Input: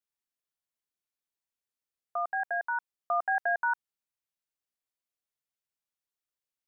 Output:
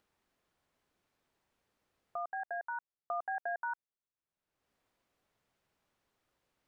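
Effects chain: upward compressor, threshold -48 dBFS; LPF 1000 Hz 6 dB/oct; compressor 1.5:1, threshold -37 dBFS, peak gain reduction 4 dB; gain -2 dB

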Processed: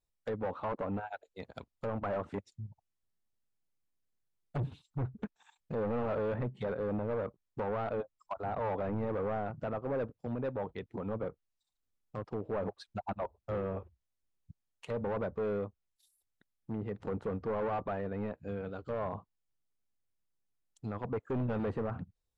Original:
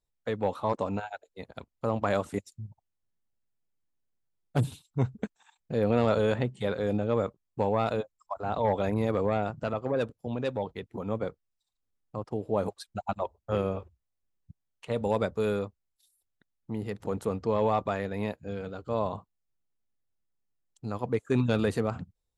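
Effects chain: overloaded stage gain 27.5 dB; vibrato 0.33 Hz 7.5 cents; treble ducked by the level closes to 1600 Hz, closed at -30.5 dBFS; gain -2.5 dB

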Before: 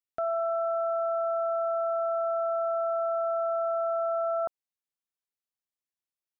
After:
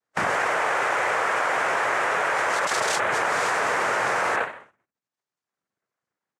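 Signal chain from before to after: tracing distortion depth 0.049 ms; Doppler pass-by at 2.7, 25 m/s, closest 2.1 m; spectral gate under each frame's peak -30 dB strong; careless resampling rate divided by 6×, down filtered, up hold; formant shift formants +5 st; band shelf 630 Hz +12 dB 2.4 oct; speakerphone echo 0.15 s, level -27 dB; shoebox room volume 44 m³, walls mixed, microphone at 0.61 m; reverb removal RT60 1 s; formant-preserving pitch shift +2 st; noise vocoder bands 3; fast leveller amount 100%

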